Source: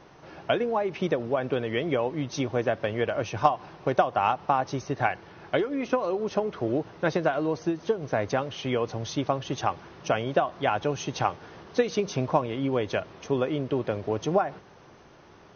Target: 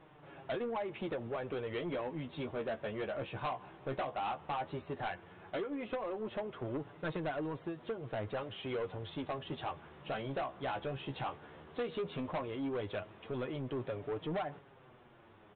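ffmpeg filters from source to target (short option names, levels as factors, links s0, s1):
-af "flanger=delay=6.3:depth=9.3:regen=28:speed=0.14:shape=triangular,aresample=8000,asoftclip=type=tanh:threshold=0.0398,aresample=44100,volume=0.631"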